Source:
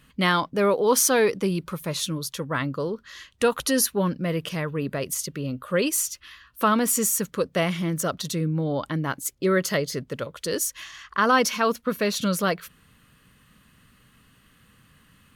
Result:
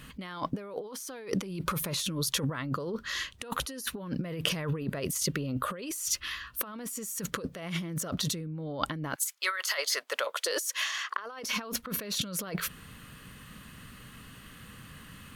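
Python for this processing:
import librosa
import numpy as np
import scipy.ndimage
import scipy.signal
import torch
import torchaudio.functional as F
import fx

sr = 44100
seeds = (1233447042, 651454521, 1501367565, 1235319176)

y = fx.highpass(x, sr, hz=fx.line((9.14, 1200.0), (11.44, 310.0)), slope=24, at=(9.14, 11.44), fade=0.02)
y = fx.over_compress(y, sr, threshold_db=-35.0, ratio=-1.0)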